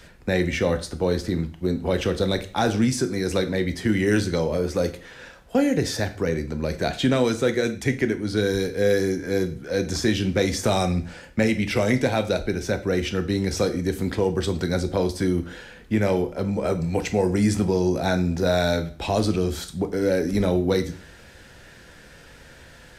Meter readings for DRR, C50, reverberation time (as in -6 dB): 7.5 dB, 14.5 dB, 0.45 s